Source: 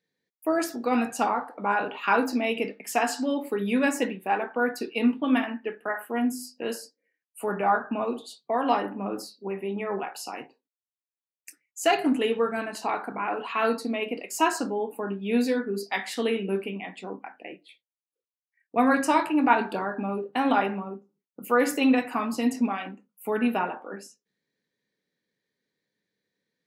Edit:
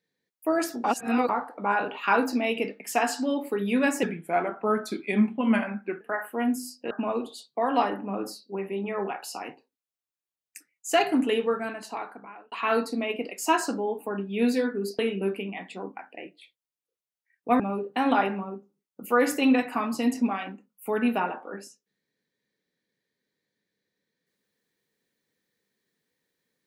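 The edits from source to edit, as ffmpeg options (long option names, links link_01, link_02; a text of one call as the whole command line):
ffmpeg -i in.wav -filter_complex "[0:a]asplit=9[link_01][link_02][link_03][link_04][link_05][link_06][link_07][link_08][link_09];[link_01]atrim=end=0.842[link_10];[link_02]atrim=start=0.838:end=1.292,asetpts=PTS-STARTPTS,areverse[link_11];[link_03]atrim=start=1.288:end=4.034[link_12];[link_04]atrim=start=4.03:end=5.77,asetpts=PTS-STARTPTS,asetrate=38808,aresample=44100[link_13];[link_05]atrim=start=5.766:end=6.672[link_14];[link_06]atrim=start=7.828:end=13.44,asetpts=PTS-STARTPTS,afade=type=out:start_time=4.492:duration=1.12[link_15];[link_07]atrim=start=13.44:end=15.912,asetpts=PTS-STARTPTS,afade=type=in:duration=0.004:curve=hsin[link_16];[link_08]atrim=start=16.258:end=18.872[link_17];[link_09]atrim=start=19.988[link_18];[link_10][link_11]acrossfade=duration=0.004:curve1=hsin:curve2=hsin[link_19];[link_19][link_12]acrossfade=duration=0.004:curve1=hsin:curve2=hsin[link_20];[link_20][link_13]acrossfade=duration=0.004:curve1=hsin:curve2=hsin[link_21];[link_21][link_14]acrossfade=duration=0.004:curve1=hsin:curve2=hsin[link_22];[link_15][link_16]concat=n=2:v=0:a=1[link_23];[link_22][link_23]acrossfade=duration=0.004:curve1=hsin:curve2=hsin[link_24];[link_24][link_17]acrossfade=duration=0.004:curve1=hsin:curve2=hsin[link_25];[link_25][link_18]acrossfade=duration=0.004:curve1=hsin:curve2=hsin" out.wav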